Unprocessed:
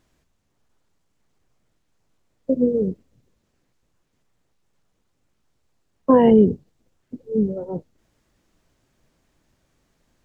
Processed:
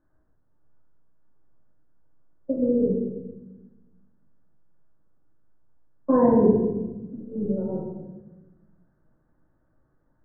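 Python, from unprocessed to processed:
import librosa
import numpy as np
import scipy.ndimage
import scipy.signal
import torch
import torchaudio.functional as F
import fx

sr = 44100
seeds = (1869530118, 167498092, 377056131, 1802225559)

y = scipy.signal.sosfilt(scipy.signal.ellip(4, 1.0, 50, 1600.0, 'lowpass', fs=sr, output='sos'), x)
y = fx.room_shoebox(y, sr, seeds[0], volume_m3=600.0, walls='mixed', distance_m=2.5)
y = F.gain(torch.from_numpy(y), -8.5).numpy()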